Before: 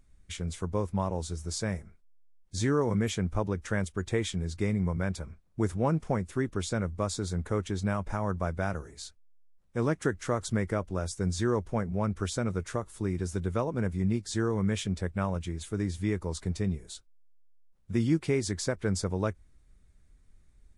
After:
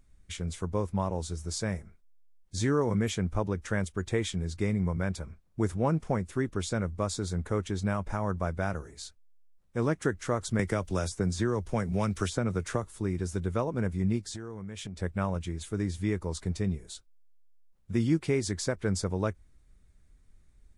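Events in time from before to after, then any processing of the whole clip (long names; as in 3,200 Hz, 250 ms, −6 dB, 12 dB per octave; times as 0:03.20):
0:10.59–0:12.86: multiband upward and downward compressor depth 100%
0:14.22–0:15.02: downward compressor 12 to 1, threshold −35 dBFS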